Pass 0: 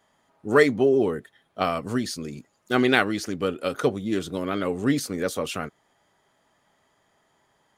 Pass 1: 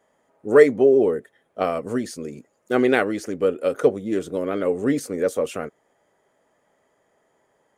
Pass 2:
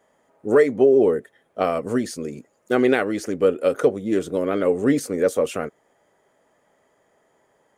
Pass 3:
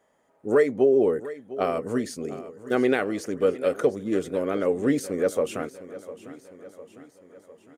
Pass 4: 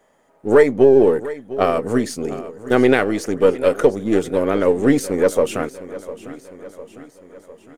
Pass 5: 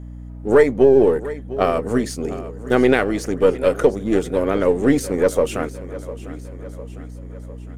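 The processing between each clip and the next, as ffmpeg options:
ffmpeg -i in.wav -af "equalizer=frequency=250:width_type=o:width=1:gain=3,equalizer=frequency=500:width_type=o:width=1:gain=12,equalizer=frequency=2000:width_type=o:width=1:gain=4,equalizer=frequency=4000:width_type=o:width=1:gain=-6,equalizer=frequency=8000:width_type=o:width=1:gain=5,volume=-5dB" out.wav
ffmpeg -i in.wav -af "alimiter=limit=-9dB:level=0:latency=1:release=233,volume=2.5dB" out.wav
ffmpeg -i in.wav -af "aecho=1:1:704|1408|2112|2816|3520:0.158|0.0872|0.0479|0.0264|0.0145,volume=-4dB" out.wav
ffmpeg -i in.wav -af "aeval=exprs='if(lt(val(0),0),0.708*val(0),val(0))':channel_layout=same,volume=9dB" out.wav
ffmpeg -i in.wav -af "aeval=exprs='val(0)+0.0251*(sin(2*PI*60*n/s)+sin(2*PI*2*60*n/s)/2+sin(2*PI*3*60*n/s)/3+sin(2*PI*4*60*n/s)/4+sin(2*PI*5*60*n/s)/5)':channel_layout=same,volume=-1dB" out.wav

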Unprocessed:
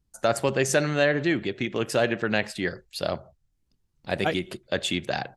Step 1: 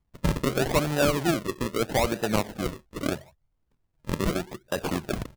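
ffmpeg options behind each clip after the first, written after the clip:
ffmpeg -i in.wav -af "acrusher=samples=40:mix=1:aa=0.000001:lfo=1:lforange=40:lforate=0.79,volume=-1dB" out.wav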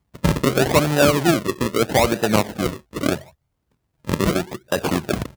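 ffmpeg -i in.wav -af "highpass=64,volume=7.5dB" out.wav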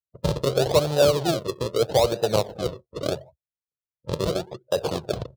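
ffmpeg -i in.wav -af "afftdn=noise_reduction=34:noise_floor=-41,equalizer=frequency=125:width_type=o:width=1:gain=6,equalizer=frequency=250:width_type=o:width=1:gain=-11,equalizer=frequency=500:width_type=o:width=1:gain=11,equalizer=frequency=2000:width_type=o:width=1:gain=-10,equalizer=frequency=4000:width_type=o:width=1:gain=9,volume=-7.5dB" out.wav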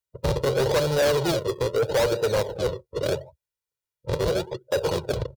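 ffmpeg -i in.wav -af "aecho=1:1:2.1:0.68,asoftclip=type=tanh:threshold=-21dB,volume=3dB" out.wav

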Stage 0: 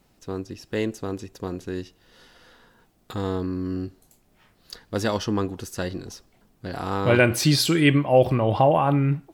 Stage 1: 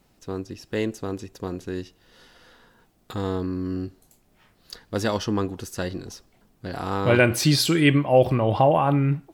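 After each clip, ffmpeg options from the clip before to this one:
ffmpeg -i in.wav -af anull out.wav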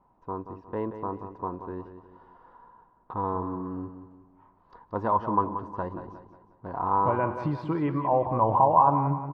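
ffmpeg -i in.wav -filter_complex "[0:a]alimiter=limit=-12dB:level=0:latency=1:release=226,lowpass=frequency=990:width_type=q:width=11,asplit=2[link_01][link_02];[link_02]aecho=0:1:180|360|540|720:0.316|0.13|0.0532|0.0218[link_03];[link_01][link_03]amix=inputs=2:normalize=0,volume=-7dB" out.wav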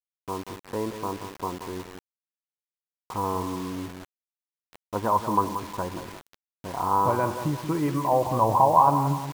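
ffmpeg -i in.wav -af "acrusher=bits=6:mix=0:aa=0.000001,volume=1.5dB" out.wav

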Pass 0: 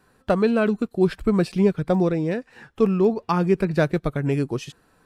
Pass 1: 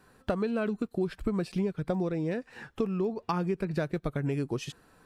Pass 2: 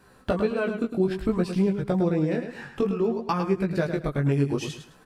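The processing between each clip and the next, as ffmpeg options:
ffmpeg -i in.wav -af "acompressor=threshold=-27dB:ratio=6" out.wav
ffmpeg -i in.wav -filter_complex "[0:a]flanger=delay=15:depth=6.8:speed=0.58,asplit=2[link_01][link_02];[link_02]aecho=0:1:106|212|318:0.376|0.094|0.0235[link_03];[link_01][link_03]amix=inputs=2:normalize=0,volume=7.5dB" out.wav

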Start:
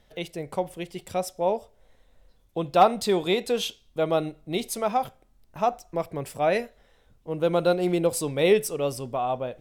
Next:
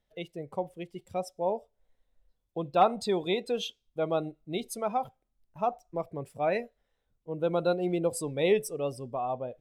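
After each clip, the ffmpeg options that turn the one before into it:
ffmpeg -i in.wav -af "afftdn=noise_reduction=13:noise_floor=-35,volume=-5dB" out.wav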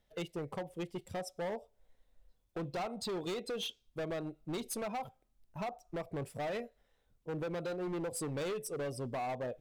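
ffmpeg -i in.wav -af "acompressor=threshold=-34dB:ratio=6,asoftclip=type=hard:threshold=-38dB,volume=3.5dB" out.wav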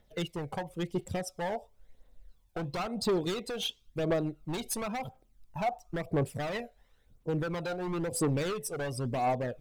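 ffmpeg -i in.wav -af "aphaser=in_gain=1:out_gain=1:delay=1.4:decay=0.52:speed=0.97:type=triangular,volume=4.5dB" out.wav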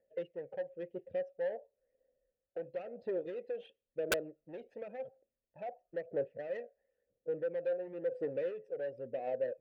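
ffmpeg -i in.wav -filter_complex "[0:a]asplit=3[link_01][link_02][link_03];[link_01]bandpass=frequency=530:width_type=q:width=8,volume=0dB[link_04];[link_02]bandpass=frequency=1840:width_type=q:width=8,volume=-6dB[link_05];[link_03]bandpass=frequency=2480:width_type=q:width=8,volume=-9dB[link_06];[link_04][link_05][link_06]amix=inputs=3:normalize=0,adynamicsmooth=sensitivity=3:basefreq=1300,aeval=exprs='(mod(26.6*val(0)+1,2)-1)/26.6':channel_layout=same,volume=4.5dB" out.wav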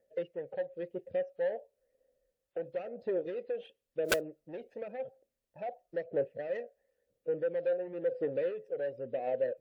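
ffmpeg -i in.wav -af "volume=3.5dB" -ar 48000 -c:a wmav2 -b:a 128k out.wma

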